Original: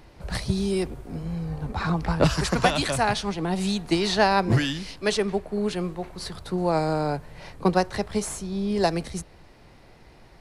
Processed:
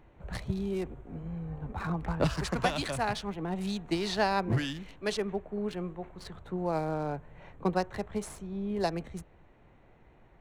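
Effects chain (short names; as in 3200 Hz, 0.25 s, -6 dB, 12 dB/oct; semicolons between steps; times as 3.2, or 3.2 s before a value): Wiener smoothing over 9 samples; gain -7.5 dB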